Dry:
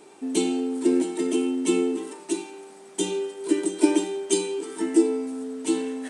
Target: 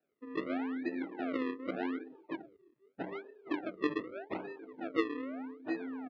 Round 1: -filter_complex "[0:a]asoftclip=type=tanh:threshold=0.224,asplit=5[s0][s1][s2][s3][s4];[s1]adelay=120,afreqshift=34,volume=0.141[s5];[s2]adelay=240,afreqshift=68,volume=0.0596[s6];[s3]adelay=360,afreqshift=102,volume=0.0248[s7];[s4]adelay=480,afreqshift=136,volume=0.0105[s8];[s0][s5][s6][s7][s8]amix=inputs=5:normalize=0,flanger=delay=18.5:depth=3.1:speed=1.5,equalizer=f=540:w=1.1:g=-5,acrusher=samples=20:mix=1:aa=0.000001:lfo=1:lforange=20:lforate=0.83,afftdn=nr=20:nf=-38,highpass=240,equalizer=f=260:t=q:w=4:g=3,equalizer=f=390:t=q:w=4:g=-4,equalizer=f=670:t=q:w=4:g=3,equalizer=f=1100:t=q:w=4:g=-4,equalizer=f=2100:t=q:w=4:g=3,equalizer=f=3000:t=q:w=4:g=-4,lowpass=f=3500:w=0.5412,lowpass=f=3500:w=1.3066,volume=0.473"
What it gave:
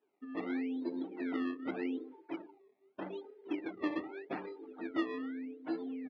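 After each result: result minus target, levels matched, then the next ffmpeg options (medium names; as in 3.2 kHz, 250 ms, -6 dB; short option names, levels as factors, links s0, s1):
saturation: distortion +18 dB; decimation with a swept rate: distortion -8 dB
-filter_complex "[0:a]asoftclip=type=tanh:threshold=0.841,asplit=5[s0][s1][s2][s3][s4];[s1]adelay=120,afreqshift=34,volume=0.141[s5];[s2]adelay=240,afreqshift=68,volume=0.0596[s6];[s3]adelay=360,afreqshift=102,volume=0.0248[s7];[s4]adelay=480,afreqshift=136,volume=0.0105[s8];[s0][s5][s6][s7][s8]amix=inputs=5:normalize=0,flanger=delay=18.5:depth=3.1:speed=1.5,equalizer=f=540:w=1.1:g=-5,acrusher=samples=20:mix=1:aa=0.000001:lfo=1:lforange=20:lforate=0.83,afftdn=nr=20:nf=-38,highpass=240,equalizer=f=260:t=q:w=4:g=3,equalizer=f=390:t=q:w=4:g=-4,equalizer=f=670:t=q:w=4:g=3,equalizer=f=1100:t=q:w=4:g=-4,equalizer=f=2100:t=q:w=4:g=3,equalizer=f=3000:t=q:w=4:g=-4,lowpass=f=3500:w=0.5412,lowpass=f=3500:w=1.3066,volume=0.473"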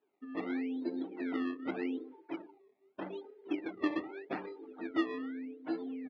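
decimation with a swept rate: distortion -8 dB
-filter_complex "[0:a]asoftclip=type=tanh:threshold=0.841,asplit=5[s0][s1][s2][s3][s4];[s1]adelay=120,afreqshift=34,volume=0.141[s5];[s2]adelay=240,afreqshift=68,volume=0.0596[s6];[s3]adelay=360,afreqshift=102,volume=0.0248[s7];[s4]adelay=480,afreqshift=136,volume=0.0105[s8];[s0][s5][s6][s7][s8]amix=inputs=5:normalize=0,flanger=delay=18.5:depth=3.1:speed=1.5,equalizer=f=540:w=1.1:g=-5,acrusher=samples=40:mix=1:aa=0.000001:lfo=1:lforange=40:lforate=0.83,afftdn=nr=20:nf=-38,highpass=240,equalizer=f=260:t=q:w=4:g=3,equalizer=f=390:t=q:w=4:g=-4,equalizer=f=670:t=q:w=4:g=3,equalizer=f=1100:t=q:w=4:g=-4,equalizer=f=2100:t=q:w=4:g=3,equalizer=f=3000:t=q:w=4:g=-4,lowpass=f=3500:w=0.5412,lowpass=f=3500:w=1.3066,volume=0.473"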